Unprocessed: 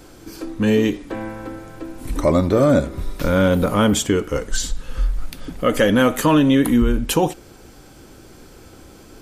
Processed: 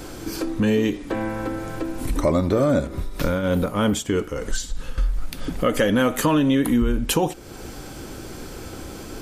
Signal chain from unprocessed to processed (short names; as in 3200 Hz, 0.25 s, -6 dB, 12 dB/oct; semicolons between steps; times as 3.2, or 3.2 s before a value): 2.87–4.98 tremolo triangle 3.2 Hz, depth 75%; compressor 2:1, threshold -34 dBFS, peak gain reduction 12.5 dB; gain +8 dB